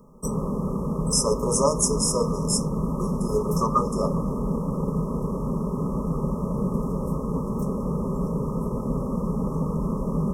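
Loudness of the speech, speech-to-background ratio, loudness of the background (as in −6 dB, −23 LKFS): −25.0 LKFS, 2.5 dB, −27.5 LKFS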